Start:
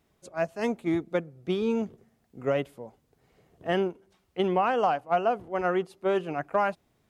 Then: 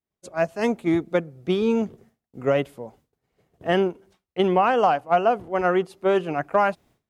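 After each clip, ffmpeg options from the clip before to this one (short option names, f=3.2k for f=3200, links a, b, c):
-af "agate=range=-33dB:threshold=-54dB:ratio=3:detection=peak,volume=5.5dB"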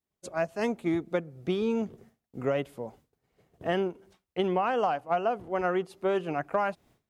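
-af "acompressor=threshold=-30dB:ratio=2"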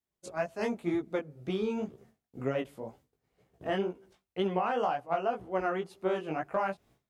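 -af "flanger=delay=15:depth=5.7:speed=2"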